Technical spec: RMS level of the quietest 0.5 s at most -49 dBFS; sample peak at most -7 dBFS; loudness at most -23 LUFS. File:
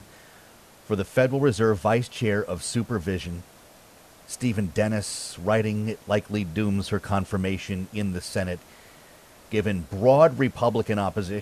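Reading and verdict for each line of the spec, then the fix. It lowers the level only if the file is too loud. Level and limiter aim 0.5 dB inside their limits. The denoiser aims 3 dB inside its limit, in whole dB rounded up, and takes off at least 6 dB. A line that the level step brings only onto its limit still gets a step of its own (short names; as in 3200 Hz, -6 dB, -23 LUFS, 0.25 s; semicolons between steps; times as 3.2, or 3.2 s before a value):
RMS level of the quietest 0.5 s -51 dBFS: OK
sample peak -5.5 dBFS: fail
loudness -25.0 LUFS: OK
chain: limiter -7.5 dBFS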